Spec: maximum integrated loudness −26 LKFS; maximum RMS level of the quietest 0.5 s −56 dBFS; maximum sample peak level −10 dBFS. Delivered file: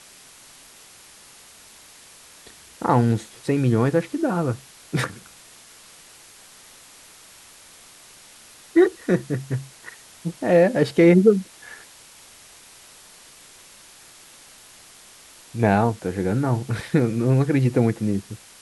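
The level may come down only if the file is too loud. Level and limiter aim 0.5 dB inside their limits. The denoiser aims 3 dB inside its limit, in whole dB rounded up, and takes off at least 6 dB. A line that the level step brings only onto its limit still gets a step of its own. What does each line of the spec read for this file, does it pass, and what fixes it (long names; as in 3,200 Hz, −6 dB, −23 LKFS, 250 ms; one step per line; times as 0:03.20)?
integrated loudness −21.5 LKFS: out of spec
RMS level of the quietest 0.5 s −48 dBFS: out of spec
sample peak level −4.0 dBFS: out of spec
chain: broadband denoise 6 dB, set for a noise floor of −48 dBFS
level −5 dB
brickwall limiter −10.5 dBFS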